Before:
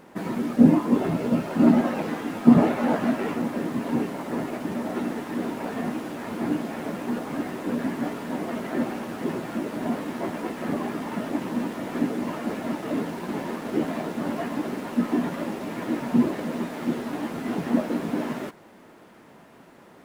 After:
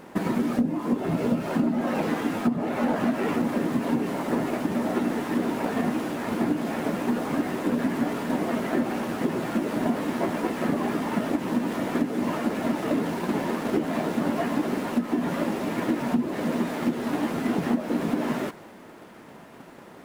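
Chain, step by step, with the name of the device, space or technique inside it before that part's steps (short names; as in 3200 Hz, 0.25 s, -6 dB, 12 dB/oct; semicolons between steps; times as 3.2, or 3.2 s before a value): drum-bus smash (transient shaper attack +6 dB, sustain +2 dB; compressor 16:1, threshold -22 dBFS, peak gain reduction 20.5 dB; soft clip -17 dBFS, distortion -21 dB); gain +3.5 dB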